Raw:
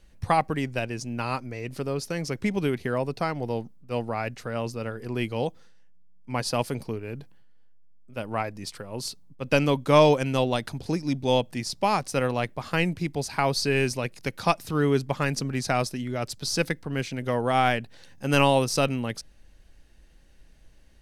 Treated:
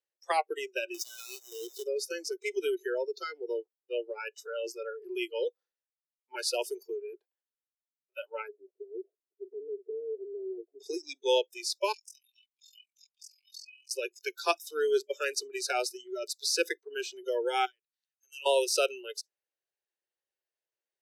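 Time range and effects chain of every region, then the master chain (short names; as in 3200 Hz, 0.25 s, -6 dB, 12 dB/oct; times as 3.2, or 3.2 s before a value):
0.94–1.84 half-waves squared off + compressor 8:1, threshold -28 dBFS
8.48–10.8 minimum comb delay 2.6 ms + steep low-pass 640 Hz 72 dB/oct + compressor 16:1, threshold -29 dBFS
11.92–13.91 steep high-pass 2400 Hz 96 dB/oct + compressor 4:1, threshold -41 dBFS + AM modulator 43 Hz, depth 90%
17.65–18.46 passive tone stack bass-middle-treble 6-0-2 + mismatched tape noise reduction encoder only
whole clip: steep high-pass 350 Hz 96 dB/oct; spectral noise reduction 30 dB; dynamic EQ 1100 Hz, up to -5 dB, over -38 dBFS, Q 0.91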